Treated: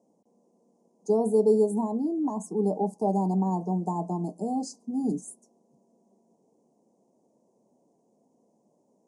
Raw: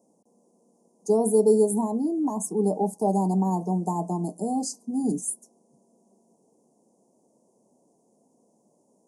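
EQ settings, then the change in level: air absorption 82 m; -2.0 dB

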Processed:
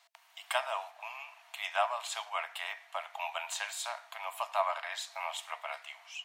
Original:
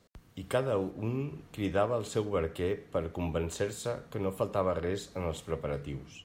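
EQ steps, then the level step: rippled Chebyshev high-pass 650 Hz, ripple 6 dB; +8.5 dB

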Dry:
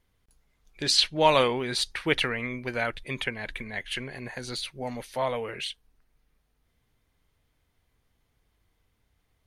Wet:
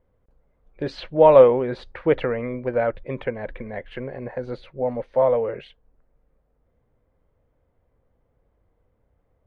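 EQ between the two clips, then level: LPF 1100 Hz 12 dB/oct; bell 530 Hz +11 dB 0.42 oct; +4.5 dB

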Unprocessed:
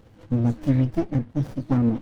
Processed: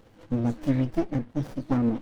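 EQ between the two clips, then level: bell 90 Hz -8 dB 2.2 oct; 0.0 dB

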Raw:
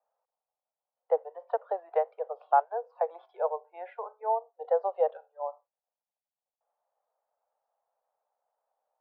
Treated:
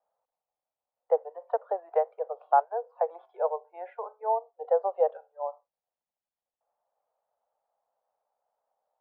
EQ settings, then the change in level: air absorption 130 m; high shelf 2400 Hz -9 dB; +2.5 dB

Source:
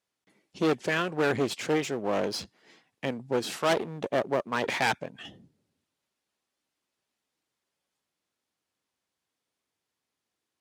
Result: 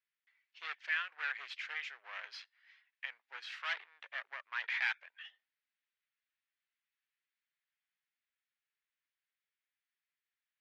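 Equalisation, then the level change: ladder high-pass 1500 Hz, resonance 40%; air absorption 260 m; +3.0 dB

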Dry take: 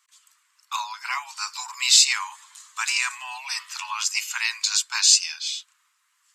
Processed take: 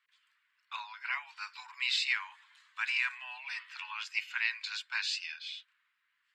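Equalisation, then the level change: air absorption 440 m; band shelf 940 Hz -11.5 dB 1.1 oct; 0.0 dB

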